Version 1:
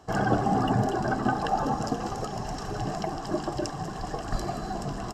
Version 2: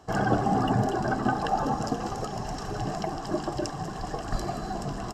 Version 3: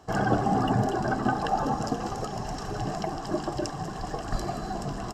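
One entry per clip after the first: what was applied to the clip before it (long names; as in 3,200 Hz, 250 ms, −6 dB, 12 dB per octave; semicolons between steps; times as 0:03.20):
no processing that can be heard
surface crackle 12 per second −51 dBFS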